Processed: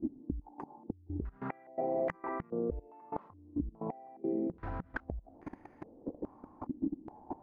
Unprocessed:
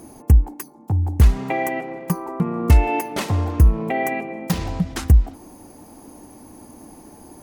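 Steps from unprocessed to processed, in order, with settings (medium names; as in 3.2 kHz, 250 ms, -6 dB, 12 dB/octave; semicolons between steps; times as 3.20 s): inverted gate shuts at -15 dBFS, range -29 dB; level held to a coarse grid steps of 21 dB; step-sequenced low-pass 2.4 Hz 290–1900 Hz; trim +3.5 dB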